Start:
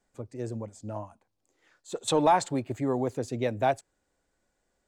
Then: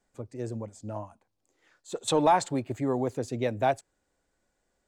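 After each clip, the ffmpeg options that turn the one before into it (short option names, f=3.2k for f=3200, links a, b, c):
-af anull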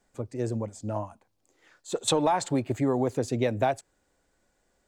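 -af "acompressor=threshold=-25dB:ratio=10,volume=5dB"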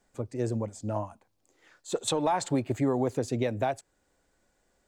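-af "alimiter=limit=-16.5dB:level=0:latency=1:release=472"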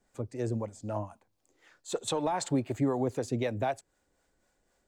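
-filter_complex "[0:a]acrossover=split=470[a][b];[a]aeval=exprs='val(0)*(1-0.5/2+0.5/2*cos(2*PI*3.9*n/s))':c=same[c];[b]aeval=exprs='val(0)*(1-0.5/2-0.5/2*cos(2*PI*3.9*n/s))':c=same[d];[c][d]amix=inputs=2:normalize=0"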